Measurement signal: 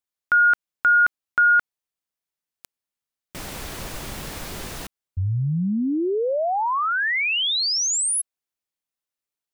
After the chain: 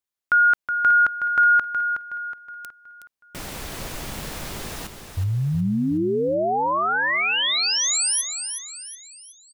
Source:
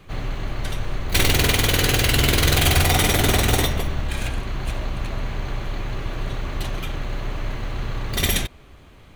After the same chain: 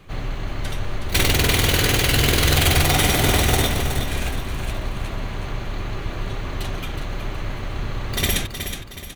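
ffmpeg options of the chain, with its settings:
ffmpeg -i in.wav -af "aecho=1:1:369|738|1107|1476|1845:0.398|0.171|0.0736|0.0317|0.0136" out.wav

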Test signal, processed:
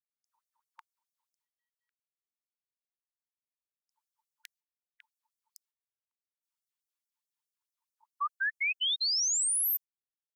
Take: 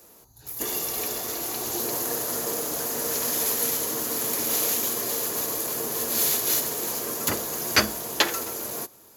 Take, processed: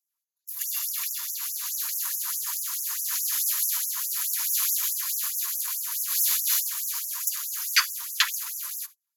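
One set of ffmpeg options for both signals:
ffmpeg -i in.wav -af "agate=range=-31dB:threshold=-40dB:ratio=16:detection=peak,afftfilt=real='re*gte(b*sr/1024,870*pow(5400/870,0.5+0.5*sin(2*PI*4.7*pts/sr)))':imag='im*gte(b*sr/1024,870*pow(5400/870,0.5+0.5*sin(2*PI*4.7*pts/sr)))':win_size=1024:overlap=0.75" out.wav

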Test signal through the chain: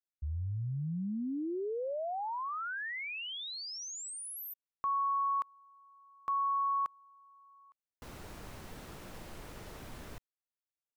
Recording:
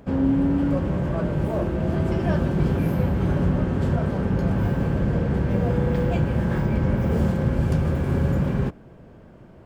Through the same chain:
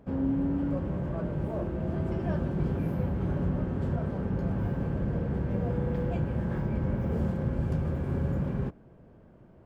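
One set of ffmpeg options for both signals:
ffmpeg -i in.wav -af "highshelf=frequency=2000:gain=-8,volume=-7.5dB" out.wav

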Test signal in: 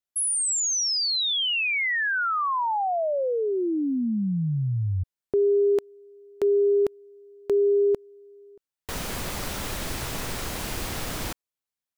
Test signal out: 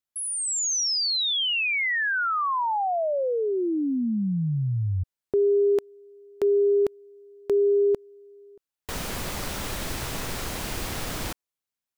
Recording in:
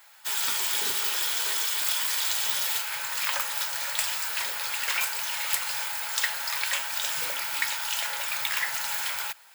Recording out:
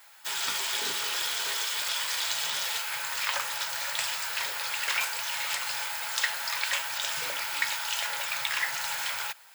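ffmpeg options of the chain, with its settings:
ffmpeg -i in.wav -filter_complex "[0:a]acrossover=split=7400[link_01][link_02];[link_02]acompressor=threshold=-33dB:ratio=4:attack=1:release=60[link_03];[link_01][link_03]amix=inputs=2:normalize=0" out.wav

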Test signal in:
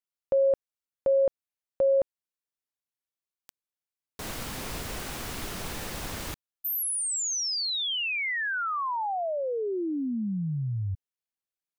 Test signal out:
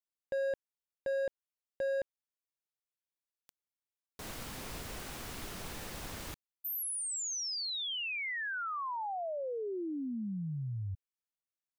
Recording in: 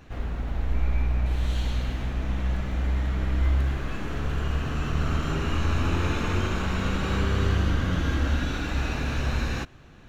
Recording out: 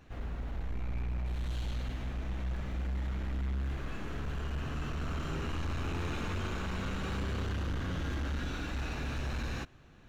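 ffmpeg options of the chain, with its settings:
ffmpeg -i in.wav -af "asoftclip=type=hard:threshold=-23.5dB,volume=-7.5dB" out.wav

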